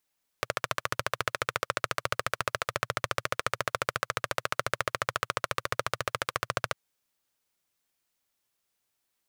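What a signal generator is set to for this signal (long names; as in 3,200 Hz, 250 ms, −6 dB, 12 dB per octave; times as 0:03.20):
pulse-train model of a single-cylinder engine, steady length 6.30 s, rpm 1,700, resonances 120/560/1,200 Hz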